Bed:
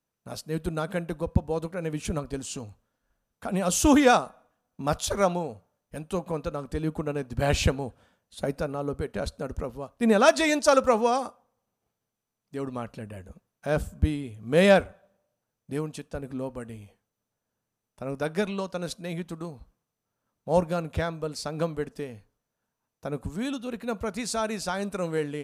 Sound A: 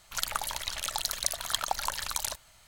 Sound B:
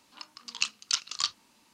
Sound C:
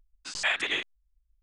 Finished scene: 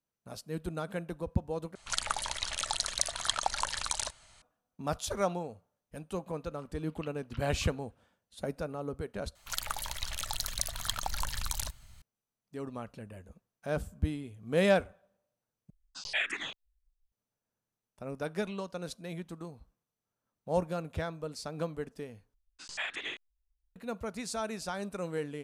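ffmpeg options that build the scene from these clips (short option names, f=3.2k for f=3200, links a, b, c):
-filter_complex "[1:a]asplit=2[a][b];[3:a]asplit=2[c][d];[0:a]volume=-7dB[e];[a]aresample=22050,aresample=44100[f];[2:a]lowpass=f=2.6k:w=0.5412,lowpass=f=2.6k:w=1.3066[g];[b]asubboost=boost=9:cutoff=200[h];[c]asplit=2[i][j];[j]afreqshift=-2[k];[i][k]amix=inputs=2:normalize=1[l];[e]asplit=5[m][n][o][p][q];[m]atrim=end=1.754[r];[f]atrim=end=2.67,asetpts=PTS-STARTPTS,volume=-0.5dB[s];[n]atrim=start=4.416:end=9.354[t];[h]atrim=end=2.67,asetpts=PTS-STARTPTS,volume=-4dB[u];[o]atrim=start=12.016:end=15.704[v];[l]atrim=end=1.42,asetpts=PTS-STARTPTS,volume=-3dB[w];[p]atrim=start=17.116:end=22.344[x];[d]atrim=end=1.42,asetpts=PTS-STARTPTS,volume=-9.5dB[y];[q]atrim=start=23.756[z];[g]atrim=end=1.73,asetpts=PTS-STARTPTS,volume=-15dB,afade=t=in:d=0.004:c=hsin,afade=t=out:st=1.726:d=0.004:c=hsin,adelay=6410[aa];[r][s]acrossfade=d=0.004:c1=hsin:c2=hsin[ab];[ab][t]acrossfade=d=0.004:c1=hsin:c2=hsin[ac];[ac][u]acrossfade=d=0.004:c1=hsin:c2=hsin[ad];[ad][v]acrossfade=d=0.004:c1=hsin:c2=hsin[ae];[ae][w]acrossfade=d=0.004:c1=hsin:c2=hsin[af];[af][x]acrossfade=d=0.004:c1=hsin:c2=hsin[ag];[ag][y]acrossfade=d=0.004:c1=hsin:c2=hsin[ah];[ah][z]acrossfade=d=0.004:c1=hsin:c2=hsin[ai];[ai][aa]amix=inputs=2:normalize=0"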